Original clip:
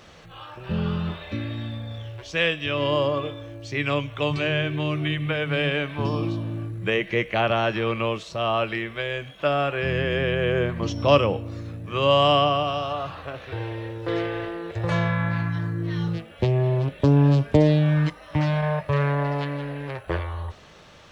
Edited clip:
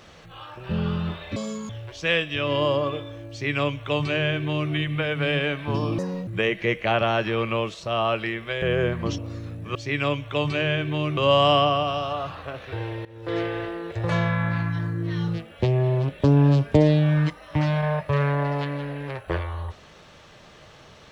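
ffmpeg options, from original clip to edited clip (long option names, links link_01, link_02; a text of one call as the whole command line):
ffmpeg -i in.wav -filter_complex "[0:a]asplit=10[link_01][link_02][link_03][link_04][link_05][link_06][link_07][link_08][link_09][link_10];[link_01]atrim=end=1.364[link_11];[link_02]atrim=start=1.36:end=2,asetpts=PTS-STARTPTS,asetrate=84672,aresample=44100[link_12];[link_03]atrim=start=1.996:end=6.294[link_13];[link_04]atrim=start=6.29:end=6.76,asetpts=PTS-STARTPTS,asetrate=71883,aresample=44100[link_14];[link_05]atrim=start=6.756:end=9.112[link_15];[link_06]atrim=start=10.388:end=10.952[link_16];[link_07]atrim=start=11.398:end=11.972[link_17];[link_08]atrim=start=3.608:end=5.032[link_18];[link_09]atrim=start=11.968:end=13.85,asetpts=PTS-STARTPTS,afade=type=out:start_time=1.878:duration=0.004:curve=hsin:silence=0.112202[link_19];[link_10]atrim=start=13.85,asetpts=PTS-STARTPTS,afade=type=in:duration=0.34:silence=0.112202[link_20];[link_11][link_12]acrossfade=duration=0.004:curve1=hsin:curve2=hsin[link_21];[link_21][link_13]acrossfade=duration=0.004:curve1=hsin:curve2=hsin[link_22];[link_22][link_14]acrossfade=duration=0.004:curve1=hsin:curve2=hsin[link_23];[link_23][link_15]acrossfade=duration=0.004:curve1=hsin:curve2=hsin[link_24];[link_24][link_16]acrossfade=duration=0.004:curve1=hsin:curve2=hsin[link_25];[link_25][link_17]acrossfade=duration=0.004:curve1=hsin:curve2=hsin[link_26];[link_26][link_18]acrossfade=duration=0.004:curve1=hsin:curve2=hsin[link_27];[link_19][link_20]concat=n=2:v=0:a=1[link_28];[link_27][link_28]acrossfade=duration=0.004:curve1=hsin:curve2=hsin" out.wav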